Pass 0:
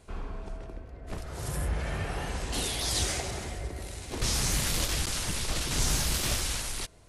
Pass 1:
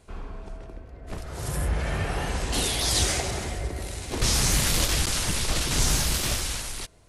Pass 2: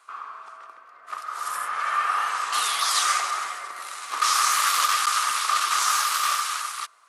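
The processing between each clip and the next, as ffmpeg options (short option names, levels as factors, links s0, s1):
-af "dynaudnorm=f=400:g=7:m=1.88"
-af "highpass=f=1200:t=q:w=14"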